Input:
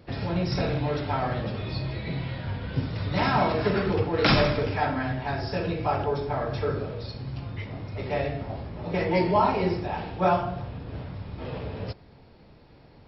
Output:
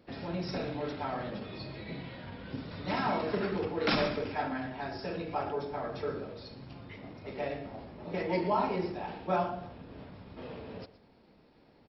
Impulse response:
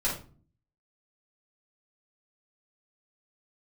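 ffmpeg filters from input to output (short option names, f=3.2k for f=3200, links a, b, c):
-filter_complex "[0:a]lowshelf=f=160:t=q:w=1.5:g=-7,atempo=1.1,asplit=2[a][b];[b]aecho=0:1:118:0.158[c];[a][c]amix=inputs=2:normalize=0,volume=-7.5dB"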